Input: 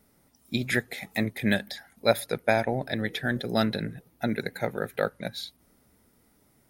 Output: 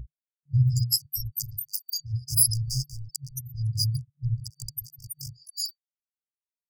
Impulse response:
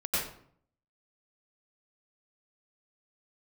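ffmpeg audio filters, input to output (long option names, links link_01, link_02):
-filter_complex "[0:a]afftfilt=real='re*pow(10,22/40*sin(2*PI*(1.7*log(max(b,1)*sr/1024/100)/log(2)-(0.59)*(pts-256)/sr)))':imag='im*pow(10,22/40*sin(2*PI*(1.7*log(max(b,1)*sr/1024/100)/log(2)-(0.59)*(pts-256)/sr)))':win_size=1024:overlap=0.75,equalizer=frequency=250:width_type=o:width=1:gain=-8,equalizer=frequency=500:width_type=o:width=1:gain=10,equalizer=frequency=1000:width_type=o:width=1:gain=-5,equalizer=frequency=2000:width_type=o:width=1:gain=-12,equalizer=frequency=4000:width_type=o:width=1:gain=-3,equalizer=frequency=8000:width_type=o:width=1:gain=-9,aeval=exprs='val(0)+0.0126*(sin(2*PI*60*n/s)+sin(2*PI*2*60*n/s)/2+sin(2*PI*3*60*n/s)/3+sin(2*PI*4*60*n/s)/4+sin(2*PI*5*60*n/s)/5)':channel_layout=same,aexciter=amount=2.6:drive=9.5:freq=2300,aemphasis=mode=reproduction:type=cd,bandreject=frequency=60:width_type=h:width=6,bandreject=frequency=120:width_type=h:width=6,bandreject=frequency=180:width_type=h:width=6,bandreject=frequency=240:width_type=h:width=6,bandreject=frequency=300:width_type=h:width=6,bandreject=frequency=360:width_type=h:width=6,afftfilt=real='re*gte(hypot(re,im),0.0282)':imag='im*gte(hypot(re,im),0.0282)':win_size=1024:overlap=0.75,volume=16.5dB,asoftclip=hard,volume=-16.5dB,afftfilt=real='re*(1-between(b*sr/4096,150,4600))':imag='im*(1-between(b*sr/4096,150,4600))':win_size=4096:overlap=0.75,acrossover=split=2400[link_01][link_02];[link_02]adelay=220[link_03];[link_01][link_03]amix=inputs=2:normalize=0,volume=8dB"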